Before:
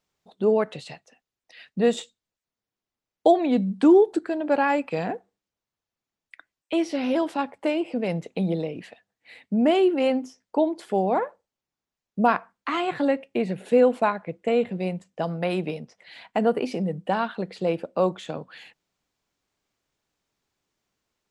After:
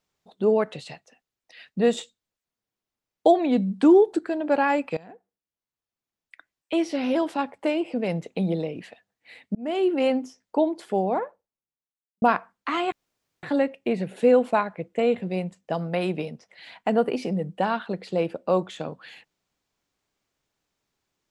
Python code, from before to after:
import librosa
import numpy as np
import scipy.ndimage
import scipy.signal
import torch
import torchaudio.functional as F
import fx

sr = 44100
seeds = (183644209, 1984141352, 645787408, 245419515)

y = fx.studio_fade_out(x, sr, start_s=10.7, length_s=1.52)
y = fx.edit(y, sr, fx.fade_in_from(start_s=4.97, length_s=1.77, floor_db=-22.0),
    fx.fade_in_span(start_s=9.55, length_s=0.4),
    fx.insert_room_tone(at_s=12.92, length_s=0.51), tone=tone)